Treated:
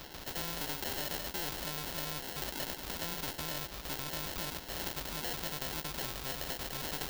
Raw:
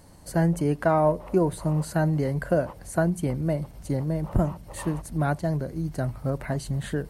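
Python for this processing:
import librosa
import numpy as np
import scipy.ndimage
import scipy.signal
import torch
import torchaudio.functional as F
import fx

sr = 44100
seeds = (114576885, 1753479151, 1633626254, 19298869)

p1 = fx.spec_dropout(x, sr, seeds[0], share_pct=34)
p2 = fx.doubler(p1, sr, ms=14.0, db=-12.0)
p3 = fx.over_compress(p2, sr, threshold_db=-30.0, ratio=-1.0)
p4 = p2 + F.gain(torch.from_numpy(p3), 0.5).numpy()
p5 = 10.0 ** (-25.5 / 20.0) * np.tanh(p4 / 10.0 ** (-25.5 / 20.0))
p6 = p5 + fx.echo_wet_highpass(p5, sr, ms=103, feedback_pct=69, hz=1700.0, wet_db=-3.0, dry=0)
p7 = fx.sample_hold(p6, sr, seeds[1], rate_hz=1200.0, jitter_pct=0)
p8 = fx.graphic_eq(p7, sr, hz=(125, 250, 500, 2000, 4000, 8000), db=(-10, -4, -5, -6, 6, -8))
p9 = fx.spectral_comp(p8, sr, ratio=2.0)
y = F.gain(torch.from_numpy(p9), 2.0).numpy()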